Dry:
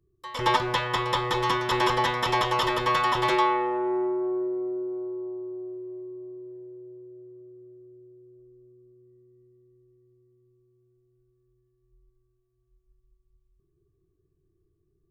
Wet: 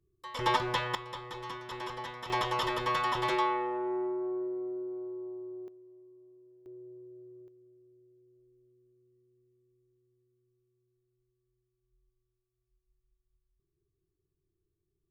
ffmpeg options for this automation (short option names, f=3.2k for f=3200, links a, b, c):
-af "asetnsamples=n=441:p=0,asendcmd='0.95 volume volume -16dB;2.3 volume volume -6.5dB;5.68 volume volume -17dB;6.66 volume volume -4.5dB;7.48 volume volume -11.5dB',volume=-5dB"